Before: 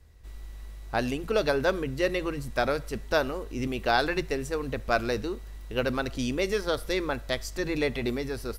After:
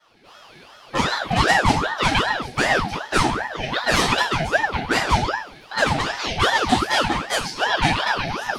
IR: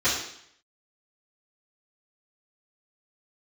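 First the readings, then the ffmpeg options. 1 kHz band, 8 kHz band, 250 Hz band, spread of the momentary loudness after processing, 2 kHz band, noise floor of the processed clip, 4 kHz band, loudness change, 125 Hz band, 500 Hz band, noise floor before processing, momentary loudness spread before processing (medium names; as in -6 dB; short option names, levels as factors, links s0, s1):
+12.5 dB, +12.5 dB, +4.5 dB, 6 LU, +11.5 dB, -47 dBFS, +13.0 dB, +8.5 dB, +9.0 dB, +1.5 dB, -42 dBFS, 7 LU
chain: -filter_complex "[0:a]equalizer=f=125:t=o:w=1:g=-5,equalizer=f=250:t=o:w=1:g=-7,equalizer=f=500:t=o:w=1:g=7,equalizer=f=1000:t=o:w=1:g=-6,equalizer=f=2000:t=o:w=1:g=6,equalizer=f=4000:t=o:w=1:g=9,equalizer=f=8000:t=o:w=1:g=-11,aeval=exprs='0.141*(abs(mod(val(0)/0.141+3,4)-2)-1)':c=same[s0];[1:a]atrim=start_sample=2205,asetrate=66150,aresample=44100[s1];[s0][s1]afir=irnorm=-1:irlink=0,aeval=exprs='val(0)*sin(2*PI*810*n/s+810*0.7/2.6*sin(2*PI*2.6*n/s))':c=same,volume=0.794"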